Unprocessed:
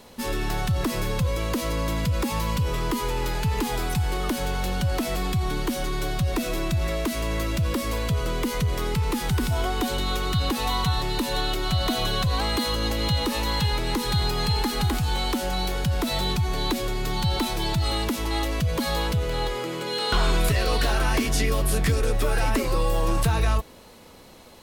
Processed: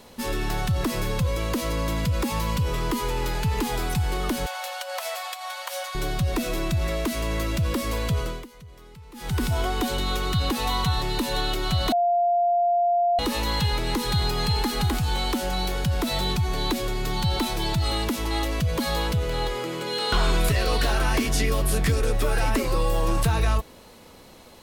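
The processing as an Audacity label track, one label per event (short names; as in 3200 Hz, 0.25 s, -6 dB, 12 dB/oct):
4.460000	5.950000	brick-wall FIR high-pass 510 Hz
8.190000	9.410000	dip -21 dB, fades 0.28 s
11.920000	13.190000	bleep 698 Hz -18 dBFS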